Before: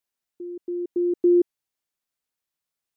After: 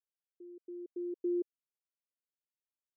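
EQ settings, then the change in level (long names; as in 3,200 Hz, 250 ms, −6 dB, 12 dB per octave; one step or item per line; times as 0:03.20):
high-pass filter 360 Hz
Butterworth low-pass 550 Hz 36 dB per octave
spectral tilt +3.5 dB per octave
−7.0 dB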